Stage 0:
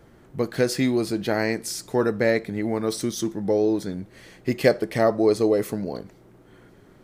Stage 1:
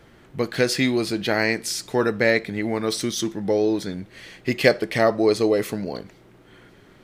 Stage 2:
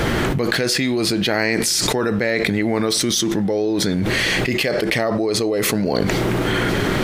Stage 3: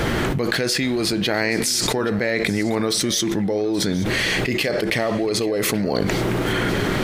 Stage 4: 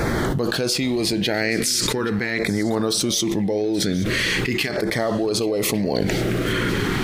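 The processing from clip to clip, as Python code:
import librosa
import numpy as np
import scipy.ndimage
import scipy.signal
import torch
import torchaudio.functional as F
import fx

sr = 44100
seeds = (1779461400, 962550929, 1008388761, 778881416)

y1 = fx.peak_eq(x, sr, hz=2900.0, db=8.5, octaves=2.0)
y2 = fx.env_flatten(y1, sr, amount_pct=100)
y2 = y2 * 10.0 ** (-7.5 / 20.0)
y3 = y2 + 10.0 ** (-17.5 / 20.0) * np.pad(y2, (int(827 * sr / 1000.0), 0))[:len(y2)]
y3 = y3 * 10.0 ** (-2.0 / 20.0)
y4 = fx.filter_lfo_notch(y3, sr, shape='saw_down', hz=0.42, low_hz=500.0, high_hz=3100.0, q=1.7)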